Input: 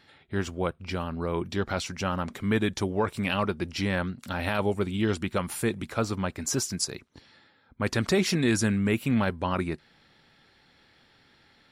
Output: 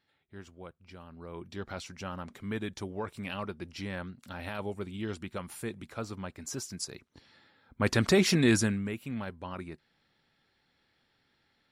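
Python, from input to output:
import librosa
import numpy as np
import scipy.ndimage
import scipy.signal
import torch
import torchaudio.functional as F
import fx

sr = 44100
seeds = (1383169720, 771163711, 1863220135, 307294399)

y = fx.gain(x, sr, db=fx.line((0.97, -18.0), (1.66, -10.0), (6.62, -10.0), (7.84, 0.5), (8.54, 0.5), (8.95, -12.0)))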